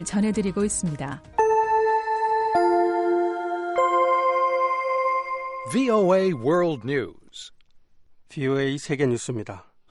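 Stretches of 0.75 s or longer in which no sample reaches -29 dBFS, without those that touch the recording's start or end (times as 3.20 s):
7.42–8.37 s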